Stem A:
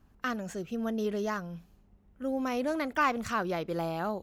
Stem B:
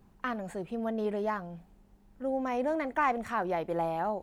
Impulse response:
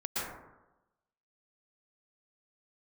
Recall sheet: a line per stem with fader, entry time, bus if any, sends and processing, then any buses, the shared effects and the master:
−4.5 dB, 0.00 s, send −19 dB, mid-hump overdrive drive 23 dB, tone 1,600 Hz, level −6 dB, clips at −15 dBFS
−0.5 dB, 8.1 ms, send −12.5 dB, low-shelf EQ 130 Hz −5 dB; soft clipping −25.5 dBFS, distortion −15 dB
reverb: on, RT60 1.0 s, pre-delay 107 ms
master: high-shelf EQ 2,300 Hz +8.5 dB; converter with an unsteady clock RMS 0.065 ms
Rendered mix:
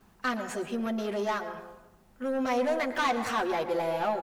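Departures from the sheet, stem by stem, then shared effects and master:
stem A −4.5 dB → −10.5 dB
master: missing converter with an unsteady clock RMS 0.065 ms

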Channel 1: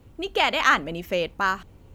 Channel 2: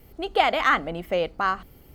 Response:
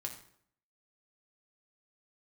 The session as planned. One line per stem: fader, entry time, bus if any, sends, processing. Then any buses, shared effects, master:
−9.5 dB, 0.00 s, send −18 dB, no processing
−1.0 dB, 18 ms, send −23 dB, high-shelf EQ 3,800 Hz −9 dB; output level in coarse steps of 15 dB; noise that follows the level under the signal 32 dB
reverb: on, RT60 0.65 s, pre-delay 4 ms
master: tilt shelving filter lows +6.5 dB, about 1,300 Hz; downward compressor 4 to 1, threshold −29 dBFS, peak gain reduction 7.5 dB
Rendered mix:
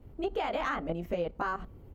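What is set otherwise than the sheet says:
stem 1: send off
stem 2: missing noise that follows the level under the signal 32 dB

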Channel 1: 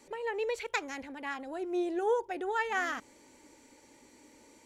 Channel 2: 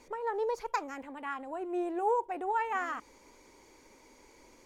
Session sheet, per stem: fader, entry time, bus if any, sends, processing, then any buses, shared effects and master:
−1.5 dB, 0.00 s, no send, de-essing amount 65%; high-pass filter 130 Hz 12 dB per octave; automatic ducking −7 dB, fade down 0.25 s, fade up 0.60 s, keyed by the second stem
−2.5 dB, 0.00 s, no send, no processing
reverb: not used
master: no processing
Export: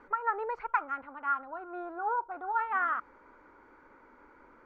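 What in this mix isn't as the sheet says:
stem 2: polarity flipped
master: extra low-pass with resonance 1,400 Hz, resonance Q 8.5

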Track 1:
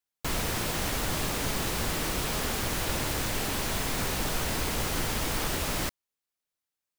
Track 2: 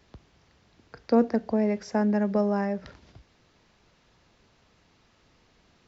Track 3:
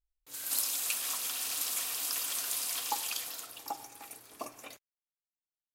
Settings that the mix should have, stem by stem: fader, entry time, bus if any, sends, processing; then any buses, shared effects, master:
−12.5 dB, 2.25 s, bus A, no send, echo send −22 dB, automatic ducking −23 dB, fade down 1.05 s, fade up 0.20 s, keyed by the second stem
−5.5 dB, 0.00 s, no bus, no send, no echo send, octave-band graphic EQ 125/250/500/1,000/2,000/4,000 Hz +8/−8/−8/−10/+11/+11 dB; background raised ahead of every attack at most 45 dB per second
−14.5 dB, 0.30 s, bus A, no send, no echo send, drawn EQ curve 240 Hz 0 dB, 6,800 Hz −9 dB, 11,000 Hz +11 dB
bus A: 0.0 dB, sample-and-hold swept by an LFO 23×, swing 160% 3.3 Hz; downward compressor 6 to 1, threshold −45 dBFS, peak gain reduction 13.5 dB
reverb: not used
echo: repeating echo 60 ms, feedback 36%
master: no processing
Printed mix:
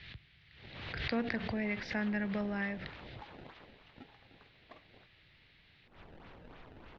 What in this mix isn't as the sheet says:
stem 1 −12.5 dB → −24.0 dB
stem 3: missing drawn EQ curve 240 Hz 0 dB, 6,800 Hz −9 dB, 11,000 Hz +11 dB
master: extra low-pass filter 3,600 Hz 24 dB per octave

